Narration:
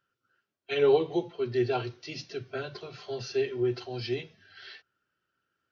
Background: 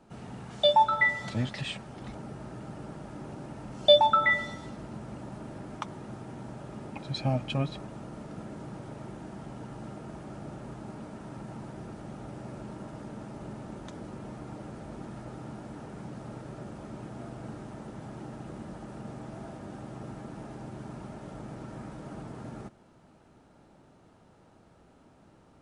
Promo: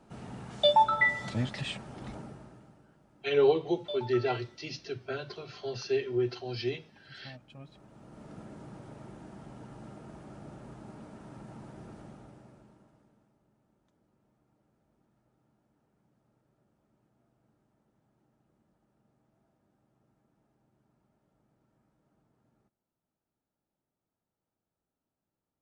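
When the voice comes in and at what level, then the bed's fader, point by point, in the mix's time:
2.55 s, −1.0 dB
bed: 0:02.17 −1 dB
0:02.90 −21 dB
0:07.54 −21 dB
0:08.29 −5.5 dB
0:12.01 −5.5 dB
0:13.44 −31 dB

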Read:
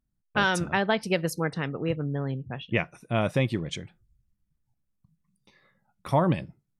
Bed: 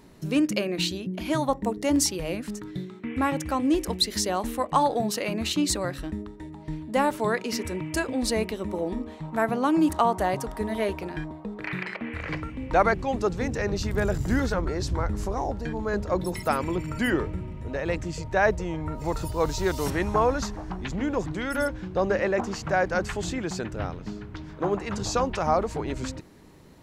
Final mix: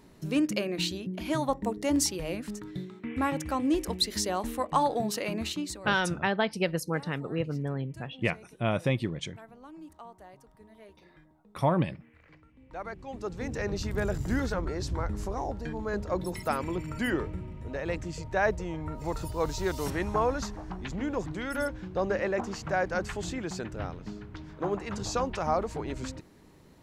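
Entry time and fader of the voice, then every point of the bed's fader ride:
5.50 s, −2.5 dB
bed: 0:05.40 −3.5 dB
0:06.18 −25.5 dB
0:12.44 −25.5 dB
0:13.57 −4.5 dB

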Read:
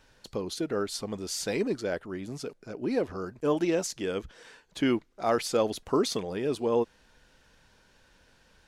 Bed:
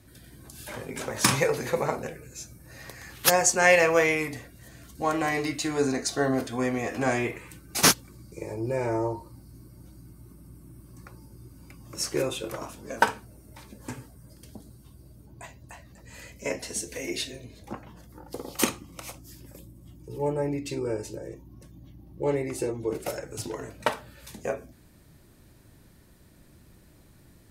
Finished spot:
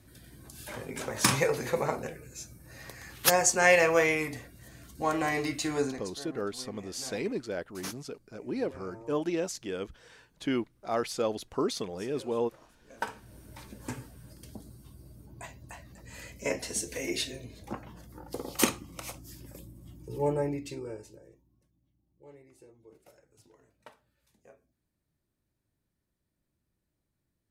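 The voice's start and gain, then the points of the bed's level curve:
5.65 s, −4.0 dB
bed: 0:05.78 −2.5 dB
0:06.17 −21.5 dB
0:12.80 −21.5 dB
0:13.36 −0.5 dB
0:20.35 −0.5 dB
0:21.81 −26.5 dB

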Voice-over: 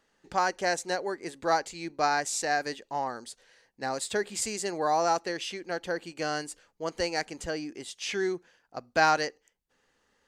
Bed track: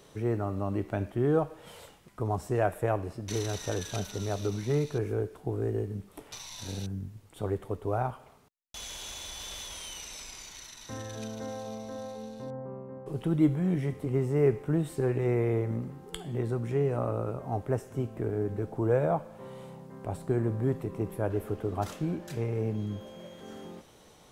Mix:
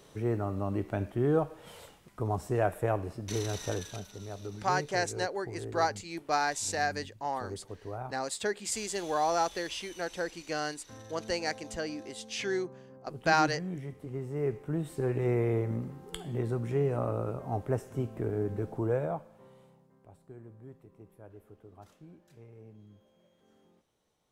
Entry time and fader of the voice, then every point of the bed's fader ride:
4.30 s, −2.5 dB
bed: 0:03.72 −1 dB
0:04.05 −9.5 dB
0:14.18 −9.5 dB
0:15.25 −1 dB
0:18.72 −1 dB
0:20.13 −21 dB

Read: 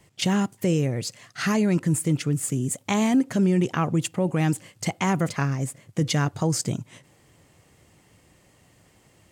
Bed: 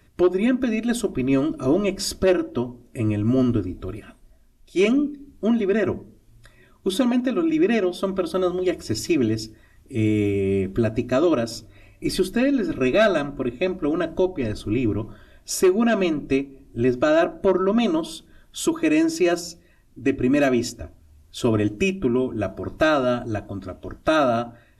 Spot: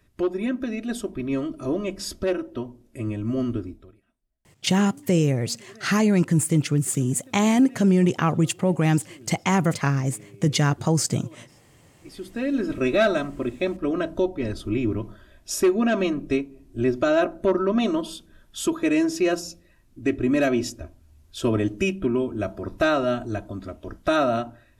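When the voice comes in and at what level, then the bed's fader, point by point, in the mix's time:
4.45 s, +2.5 dB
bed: 0:03.69 −6 dB
0:04.01 −27 dB
0:11.90 −27 dB
0:12.56 −2 dB

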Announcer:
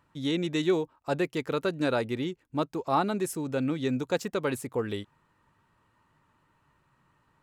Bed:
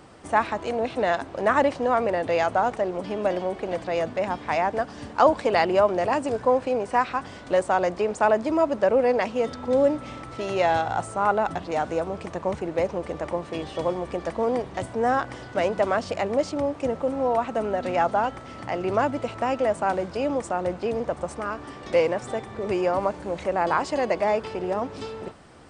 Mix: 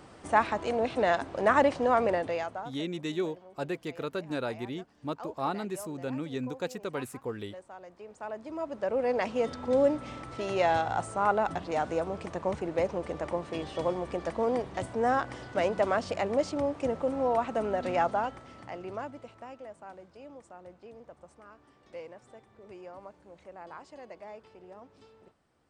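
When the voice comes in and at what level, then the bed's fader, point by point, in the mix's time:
2.50 s, −6.0 dB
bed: 0:02.13 −2.5 dB
0:02.89 −25 dB
0:07.86 −25 dB
0:09.30 −4 dB
0:17.97 −4 dB
0:19.70 −22.5 dB

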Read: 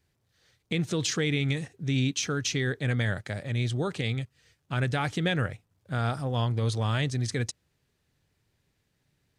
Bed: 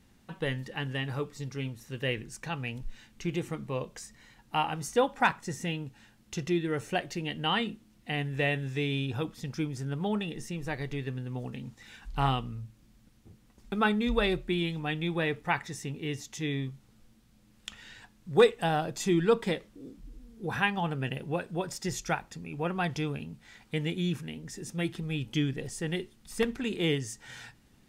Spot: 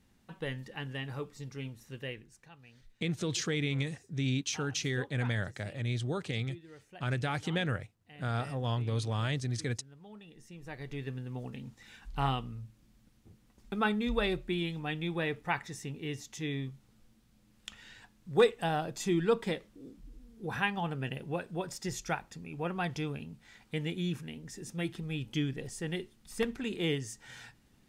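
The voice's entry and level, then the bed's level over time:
2.30 s, −5.0 dB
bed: 0:01.93 −5.5 dB
0:02.57 −21.5 dB
0:10.08 −21.5 dB
0:11.03 −3.5 dB

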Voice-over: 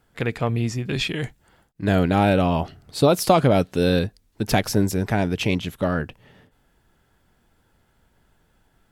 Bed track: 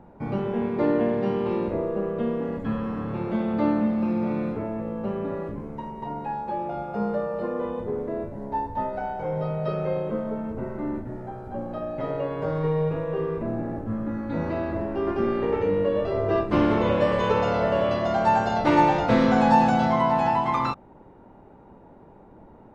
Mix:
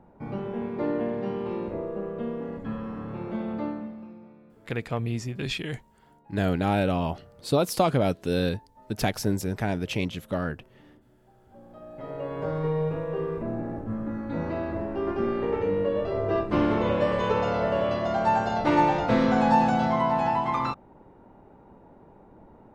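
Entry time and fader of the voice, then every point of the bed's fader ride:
4.50 s, −6.0 dB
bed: 0:03.52 −5.5 dB
0:04.39 −26.5 dB
0:11.17 −26.5 dB
0:12.37 −2.5 dB

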